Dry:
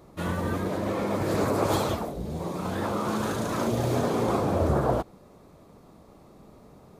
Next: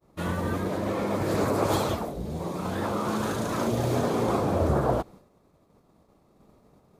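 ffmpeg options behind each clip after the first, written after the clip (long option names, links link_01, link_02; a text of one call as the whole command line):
ffmpeg -i in.wav -af "agate=range=-33dB:threshold=-44dB:ratio=3:detection=peak" out.wav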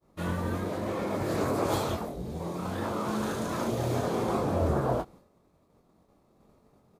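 ffmpeg -i in.wav -filter_complex "[0:a]asplit=2[link_01][link_02];[link_02]adelay=23,volume=-7dB[link_03];[link_01][link_03]amix=inputs=2:normalize=0,volume=-4dB" out.wav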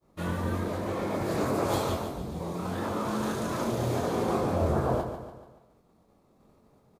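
ffmpeg -i in.wav -af "aecho=1:1:144|288|432|576|720:0.355|0.17|0.0817|0.0392|0.0188" out.wav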